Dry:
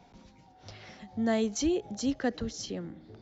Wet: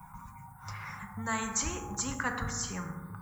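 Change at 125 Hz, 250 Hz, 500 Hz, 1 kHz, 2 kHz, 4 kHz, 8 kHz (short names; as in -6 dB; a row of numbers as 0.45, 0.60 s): +4.0 dB, -8.5 dB, -11.5 dB, +5.0 dB, +6.0 dB, -2.0 dB, n/a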